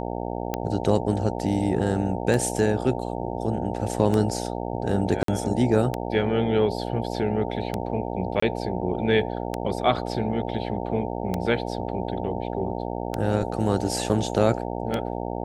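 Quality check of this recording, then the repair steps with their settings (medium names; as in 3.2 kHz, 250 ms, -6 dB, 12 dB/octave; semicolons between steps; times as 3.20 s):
buzz 60 Hz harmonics 15 -30 dBFS
tick 33 1/3 rpm -12 dBFS
5.23–5.28 s: dropout 53 ms
8.40–8.42 s: dropout 24 ms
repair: de-click; de-hum 60 Hz, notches 15; interpolate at 5.23 s, 53 ms; interpolate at 8.40 s, 24 ms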